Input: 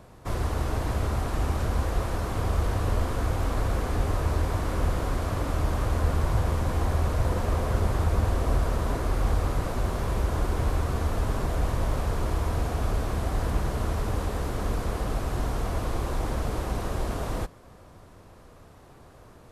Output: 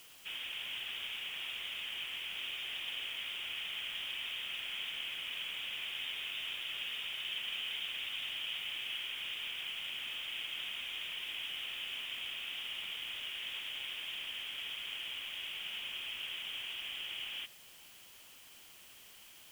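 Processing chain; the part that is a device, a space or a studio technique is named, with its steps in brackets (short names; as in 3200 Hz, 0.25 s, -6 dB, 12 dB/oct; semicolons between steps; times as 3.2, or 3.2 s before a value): scrambled radio voice (BPF 330–2900 Hz; inverted band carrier 3600 Hz; white noise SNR 16 dB); gain -6.5 dB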